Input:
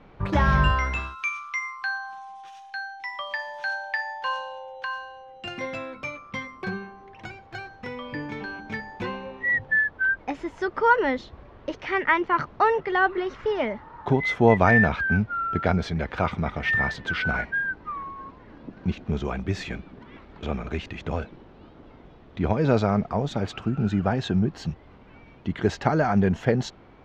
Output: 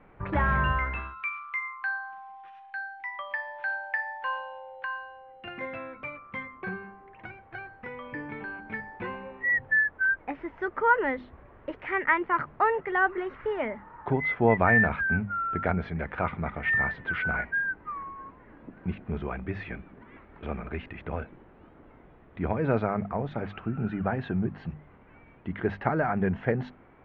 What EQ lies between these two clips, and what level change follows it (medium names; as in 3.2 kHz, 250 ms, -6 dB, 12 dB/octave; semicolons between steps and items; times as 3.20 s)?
four-pole ladder low-pass 2.6 kHz, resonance 30%; hum notches 50/100/150/200/250 Hz; +2.0 dB